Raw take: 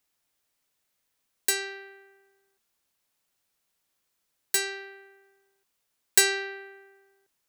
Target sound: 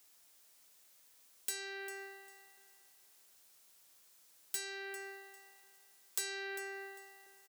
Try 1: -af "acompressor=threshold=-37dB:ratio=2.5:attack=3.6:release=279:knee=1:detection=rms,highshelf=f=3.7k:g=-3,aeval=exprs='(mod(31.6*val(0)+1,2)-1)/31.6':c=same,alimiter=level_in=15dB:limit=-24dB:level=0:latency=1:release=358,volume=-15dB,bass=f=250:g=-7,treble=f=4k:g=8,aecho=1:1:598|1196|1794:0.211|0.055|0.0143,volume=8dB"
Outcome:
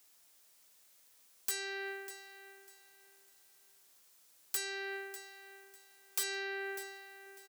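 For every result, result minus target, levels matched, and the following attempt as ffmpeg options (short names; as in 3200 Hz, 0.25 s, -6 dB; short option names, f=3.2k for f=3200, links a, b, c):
echo 0.199 s late; compressor: peak gain reduction -4.5 dB
-af "acompressor=threshold=-37dB:ratio=2.5:attack=3.6:release=279:knee=1:detection=rms,highshelf=f=3.7k:g=-3,aeval=exprs='(mod(31.6*val(0)+1,2)-1)/31.6':c=same,alimiter=level_in=15dB:limit=-24dB:level=0:latency=1:release=358,volume=-15dB,bass=f=250:g=-7,treble=f=4k:g=8,aecho=1:1:399|798|1197:0.211|0.055|0.0143,volume=8dB"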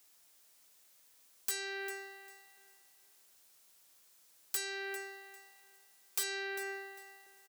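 compressor: peak gain reduction -4.5 dB
-af "acompressor=threshold=-44.5dB:ratio=2.5:attack=3.6:release=279:knee=1:detection=rms,highshelf=f=3.7k:g=-3,aeval=exprs='(mod(31.6*val(0)+1,2)-1)/31.6':c=same,alimiter=level_in=15dB:limit=-24dB:level=0:latency=1:release=358,volume=-15dB,bass=f=250:g=-7,treble=f=4k:g=8,aecho=1:1:399|798|1197:0.211|0.055|0.0143,volume=8dB"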